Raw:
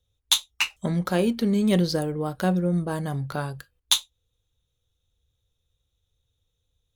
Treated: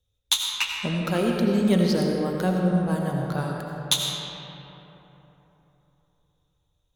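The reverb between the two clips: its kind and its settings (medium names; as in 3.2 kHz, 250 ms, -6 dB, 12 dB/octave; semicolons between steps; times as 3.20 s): algorithmic reverb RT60 3.7 s, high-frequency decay 0.45×, pre-delay 45 ms, DRR 0 dB; trim -2 dB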